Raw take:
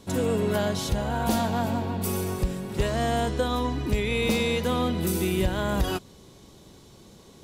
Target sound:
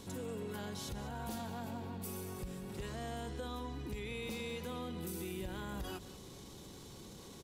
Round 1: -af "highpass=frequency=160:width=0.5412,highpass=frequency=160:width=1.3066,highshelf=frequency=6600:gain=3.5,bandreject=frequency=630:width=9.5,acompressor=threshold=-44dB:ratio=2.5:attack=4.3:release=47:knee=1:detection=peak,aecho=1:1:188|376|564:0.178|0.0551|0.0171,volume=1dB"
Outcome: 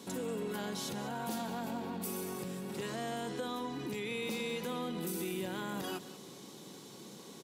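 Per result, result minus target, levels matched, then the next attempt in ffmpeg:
125 Hz band −6.0 dB; downward compressor: peak gain reduction −5 dB
-af "highshelf=frequency=6600:gain=3.5,bandreject=frequency=630:width=9.5,acompressor=threshold=-44dB:ratio=2.5:attack=4.3:release=47:knee=1:detection=peak,aecho=1:1:188|376|564:0.178|0.0551|0.0171,volume=1dB"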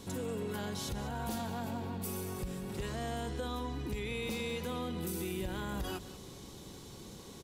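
downward compressor: peak gain reduction −4.5 dB
-af "highshelf=frequency=6600:gain=3.5,bandreject=frequency=630:width=9.5,acompressor=threshold=-51.5dB:ratio=2.5:attack=4.3:release=47:knee=1:detection=peak,aecho=1:1:188|376|564:0.178|0.0551|0.0171,volume=1dB"

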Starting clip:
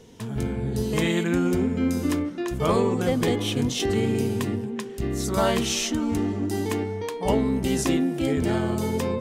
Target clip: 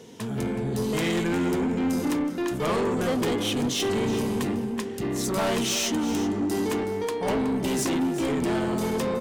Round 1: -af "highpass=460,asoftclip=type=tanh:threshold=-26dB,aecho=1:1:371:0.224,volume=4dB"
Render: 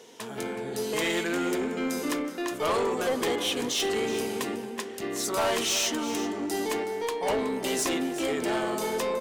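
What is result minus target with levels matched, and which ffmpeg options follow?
125 Hz band −10.5 dB
-af "highpass=150,asoftclip=type=tanh:threshold=-26dB,aecho=1:1:371:0.224,volume=4dB"

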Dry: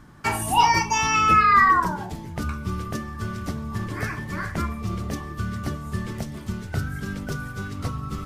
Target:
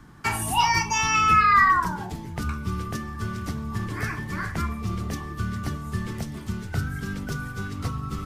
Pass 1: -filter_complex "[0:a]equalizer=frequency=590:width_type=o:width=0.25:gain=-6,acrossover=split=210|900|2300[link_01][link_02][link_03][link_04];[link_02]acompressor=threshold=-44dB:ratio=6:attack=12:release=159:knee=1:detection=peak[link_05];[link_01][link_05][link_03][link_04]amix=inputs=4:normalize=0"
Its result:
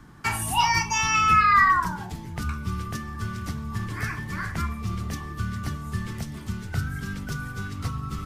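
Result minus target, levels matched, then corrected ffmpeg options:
downward compressor: peak gain reduction +6.5 dB
-filter_complex "[0:a]equalizer=frequency=590:width_type=o:width=0.25:gain=-6,acrossover=split=210|900|2300[link_01][link_02][link_03][link_04];[link_02]acompressor=threshold=-36dB:ratio=6:attack=12:release=159:knee=1:detection=peak[link_05];[link_01][link_05][link_03][link_04]amix=inputs=4:normalize=0"

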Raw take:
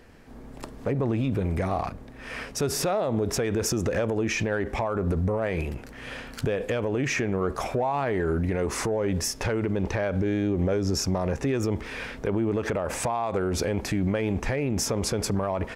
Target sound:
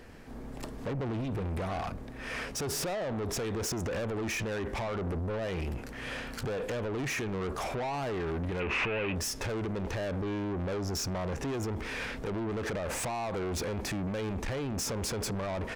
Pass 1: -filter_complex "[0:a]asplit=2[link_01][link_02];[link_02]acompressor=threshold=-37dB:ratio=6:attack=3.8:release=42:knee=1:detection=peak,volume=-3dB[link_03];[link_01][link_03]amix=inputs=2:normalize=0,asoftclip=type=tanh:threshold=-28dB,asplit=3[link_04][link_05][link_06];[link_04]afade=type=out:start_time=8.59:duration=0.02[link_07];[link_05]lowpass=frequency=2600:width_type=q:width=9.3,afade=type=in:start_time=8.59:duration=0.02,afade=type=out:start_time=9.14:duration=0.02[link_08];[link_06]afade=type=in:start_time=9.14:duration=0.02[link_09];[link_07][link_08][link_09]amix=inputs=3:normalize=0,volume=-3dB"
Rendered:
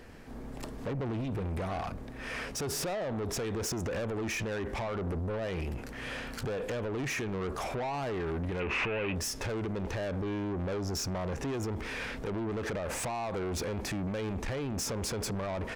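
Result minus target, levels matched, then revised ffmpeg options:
downward compressor: peak gain reduction +8 dB
-filter_complex "[0:a]asplit=2[link_01][link_02];[link_02]acompressor=threshold=-27.5dB:ratio=6:attack=3.8:release=42:knee=1:detection=peak,volume=-3dB[link_03];[link_01][link_03]amix=inputs=2:normalize=0,asoftclip=type=tanh:threshold=-28dB,asplit=3[link_04][link_05][link_06];[link_04]afade=type=out:start_time=8.59:duration=0.02[link_07];[link_05]lowpass=frequency=2600:width_type=q:width=9.3,afade=type=in:start_time=8.59:duration=0.02,afade=type=out:start_time=9.14:duration=0.02[link_08];[link_06]afade=type=in:start_time=9.14:duration=0.02[link_09];[link_07][link_08][link_09]amix=inputs=3:normalize=0,volume=-3dB"

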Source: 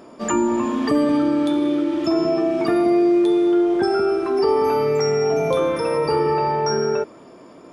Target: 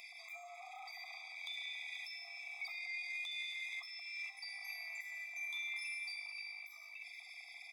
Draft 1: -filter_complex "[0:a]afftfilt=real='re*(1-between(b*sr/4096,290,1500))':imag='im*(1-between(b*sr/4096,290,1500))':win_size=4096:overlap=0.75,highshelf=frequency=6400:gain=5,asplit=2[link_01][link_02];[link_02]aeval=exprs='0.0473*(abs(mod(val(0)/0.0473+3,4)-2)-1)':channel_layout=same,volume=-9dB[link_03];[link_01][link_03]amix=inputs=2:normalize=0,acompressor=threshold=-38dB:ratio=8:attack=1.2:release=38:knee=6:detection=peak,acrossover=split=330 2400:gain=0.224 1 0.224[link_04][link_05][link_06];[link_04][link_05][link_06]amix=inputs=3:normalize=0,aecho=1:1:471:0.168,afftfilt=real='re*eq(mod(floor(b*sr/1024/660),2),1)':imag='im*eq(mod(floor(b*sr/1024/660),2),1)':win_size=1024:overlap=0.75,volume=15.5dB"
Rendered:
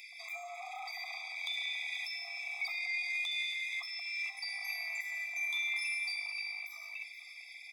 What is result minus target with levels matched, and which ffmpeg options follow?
downward compressor: peak gain reduction −7.5 dB
-filter_complex "[0:a]afftfilt=real='re*(1-between(b*sr/4096,290,1500))':imag='im*(1-between(b*sr/4096,290,1500))':win_size=4096:overlap=0.75,highshelf=frequency=6400:gain=5,asplit=2[link_01][link_02];[link_02]aeval=exprs='0.0473*(abs(mod(val(0)/0.0473+3,4)-2)-1)':channel_layout=same,volume=-9dB[link_03];[link_01][link_03]amix=inputs=2:normalize=0,acompressor=threshold=-46.5dB:ratio=8:attack=1.2:release=38:knee=6:detection=peak,acrossover=split=330 2400:gain=0.224 1 0.224[link_04][link_05][link_06];[link_04][link_05][link_06]amix=inputs=3:normalize=0,aecho=1:1:471:0.168,afftfilt=real='re*eq(mod(floor(b*sr/1024/660),2),1)':imag='im*eq(mod(floor(b*sr/1024/660),2),1)':win_size=1024:overlap=0.75,volume=15.5dB"

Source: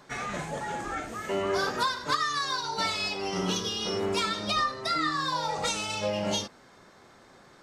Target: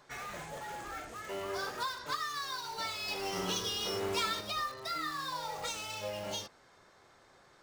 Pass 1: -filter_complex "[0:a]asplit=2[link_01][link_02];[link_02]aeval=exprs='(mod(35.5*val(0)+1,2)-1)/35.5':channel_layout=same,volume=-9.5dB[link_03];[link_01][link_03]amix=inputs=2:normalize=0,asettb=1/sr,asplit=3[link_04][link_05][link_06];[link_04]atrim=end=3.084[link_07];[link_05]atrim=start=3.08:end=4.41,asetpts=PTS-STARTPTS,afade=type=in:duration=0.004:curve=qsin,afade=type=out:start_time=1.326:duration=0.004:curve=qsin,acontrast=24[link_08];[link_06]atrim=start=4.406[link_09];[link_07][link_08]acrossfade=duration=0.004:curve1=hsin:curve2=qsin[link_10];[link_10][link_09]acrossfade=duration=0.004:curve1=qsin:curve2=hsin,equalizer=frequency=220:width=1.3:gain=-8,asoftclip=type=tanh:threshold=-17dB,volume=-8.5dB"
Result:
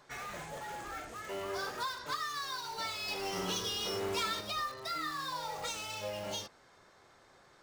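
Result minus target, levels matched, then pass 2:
soft clipping: distortion +18 dB
-filter_complex "[0:a]asplit=2[link_01][link_02];[link_02]aeval=exprs='(mod(35.5*val(0)+1,2)-1)/35.5':channel_layout=same,volume=-9.5dB[link_03];[link_01][link_03]amix=inputs=2:normalize=0,asettb=1/sr,asplit=3[link_04][link_05][link_06];[link_04]atrim=end=3.084[link_07];[link_05]atrim=start=3.08:end=4.41,asetpts=PTS-STARTPTS,afade=type=in:duration=0.004:curve=qsin,afade=type=out:start_time=1.326:duration=0.004:curve=qsin,acontrast=24[link_08];[link_06]atrim=start=4.406[link_09];[link_07][link_08]acrossfade=duration=0.004:curve1=hsin:curve2=qsin[link_10];[link_10][link_09]acrossfade=duration=0.004:curve1=qsin:curve2=hsin,equalizer=frequency=220:width=1.3:gain=-8,asoftclip=type=tanh:threshold=-6.5dB,volume=-8.5dB"

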